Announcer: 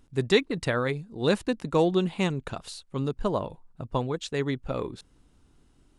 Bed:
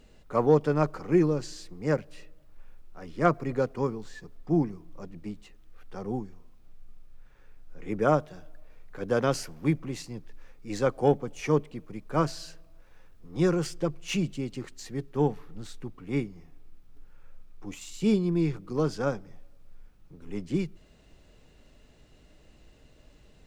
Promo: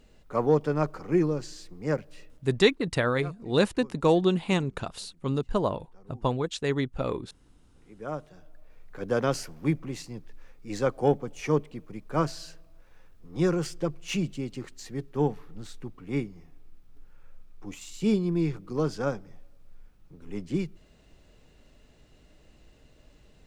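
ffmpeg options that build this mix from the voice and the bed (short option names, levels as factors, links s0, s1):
-filter_complex "[0:a]adelay=2300,volume=1.12[s0];[1:a]volume=7.5,afade=t=out:st=2.24:d=0.65:silence=0.125893,afade=t=in:st=7.94:d=0.93:silence=0.112202[s1];[s0][s1]amix=inputs=2:normalize=0"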